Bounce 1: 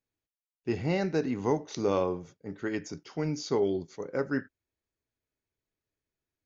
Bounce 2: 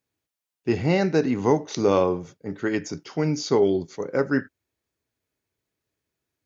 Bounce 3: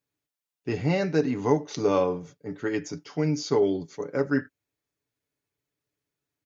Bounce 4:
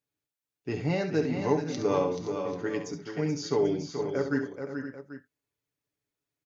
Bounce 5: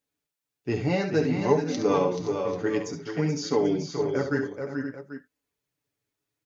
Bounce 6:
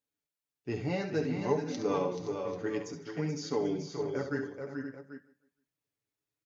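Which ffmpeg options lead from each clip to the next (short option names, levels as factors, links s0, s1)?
-af "highpass=65,volume=2.37"
-af "aecho=1:1:6.9:0.5,volume=0.596"
-af "aecho=1:1:69|431|494|519|789:0.335|0.422|0.1|0.251|0.178,volume=0.631"
-af "flanger=delay=3.8:depth=5.7:regen=-35:speed=0.56:shape=sinusoidal,volume=2.37"
-af "aecho=1:1:154|308|462:0.1|0.04|0.016,volume=0.422"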